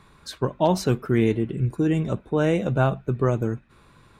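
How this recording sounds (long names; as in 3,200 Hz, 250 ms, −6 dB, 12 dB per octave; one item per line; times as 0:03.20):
background noise floor −55 dBFS
spectral slope −6.5 dB per octave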